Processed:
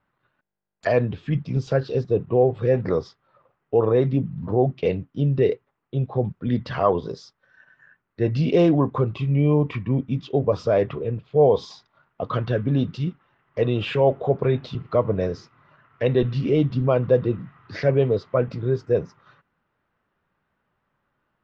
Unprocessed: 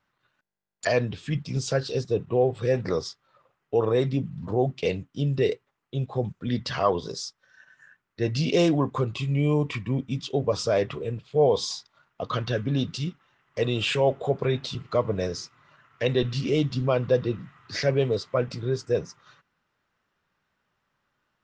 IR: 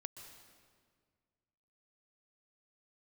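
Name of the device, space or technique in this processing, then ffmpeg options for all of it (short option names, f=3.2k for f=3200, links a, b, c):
phone in a pocket: -af "lowpass=3.8k,highshelf=f=2.1k:g=-11,volume=4.5dB"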